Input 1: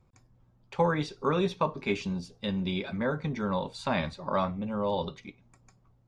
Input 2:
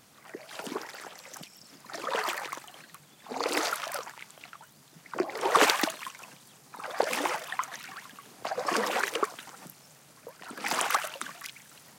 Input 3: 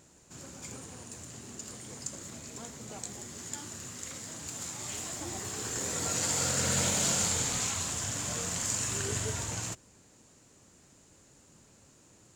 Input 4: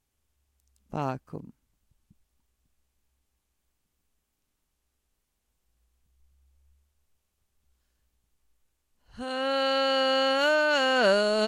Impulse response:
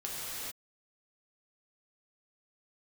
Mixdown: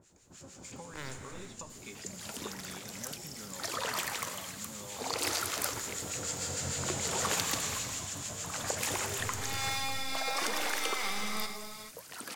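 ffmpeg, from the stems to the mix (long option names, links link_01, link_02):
-filter_complex "[0:a]volume=-14.5dB[link_01];[1:a]dynaudnorm=framelen=160:gausssize=17:maxgain=7dB,adelay=1700,volume=-9.5dB,asplit=2[link_02][link_03];[link_03]volume=-16.5dB[link_04];[2:a]lowpass=frequency=2000:poles=1,acrossover=split=1300[link_05][link_06];[link_05]aeval=exprs='val(0)*(1-1/2+1/2*cos(2*PI*6.6*n/s))':channel_layout=same[link_07];[link_06]aeval=exprs='val(0)*(1-1/2-1/2*cos(2*PI*6.6*n/s))':channel_layout=same[link_08];[link_07][link_08]amix=inputs=2:normalize=0,volume=-3dB,asplit=2[link_09][link_10];[link_10]volume=-5dB[link_11];[3:a]aeval=exprs='abs(val(0))':channel_layout=same,acrossover=split=600[link_12][link_13];[link_12]aeval=exprs='val(0)*(1-0.7/2+0.7/2*cos(2*PI*1.6*n/s))':channel_layout=same[link_14];[link_13]aeval=exprs='val(0)*(1-0.7/2-0.7/2*cos(2*PI*1.6*n/s))':channel_layout=same[link_15];[link_14][link_15]amix=inputs=2:normalize=0,volume=-10.5dB,asplit=2[link_16][link_17];[link_17]volume=-6.5dB[link_18];[link_02][link_16]amix=inputs=2:normalize=0,acompressor=threshold=-36dB:ratio=6,volume=0dB[link_19];[link_01][link_09]amix=inputs=2:normalize=0,acompressor=threshold=-46dB:ratio=6,volume=0dB[link_20];[4:a]atrim=start_sample=2205[link_21];[link_04][link_11][link_18]amix=inputs=3:normalize=0[link_22];[link_22][link_21]afir=irnorm=-1:irlink=0[link_23];[link_19][link_20][link_23]amix=inputs=3:normalize=0,highshelf=frequency=3300:gain=12"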